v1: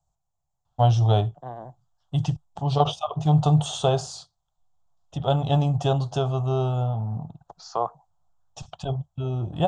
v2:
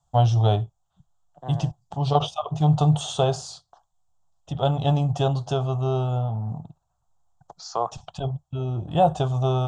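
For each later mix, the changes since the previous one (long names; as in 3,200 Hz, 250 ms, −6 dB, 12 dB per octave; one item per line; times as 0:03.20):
first voice: entry −0.65 s
second voice: add high-shelf EQ 5,700 Hz +10.5 dB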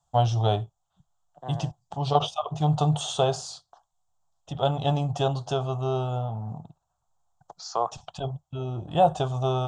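master: add low-shelf EQ 240 Hz −6.5 dB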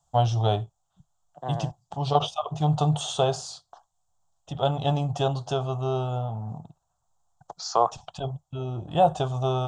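second voice +5.0 dB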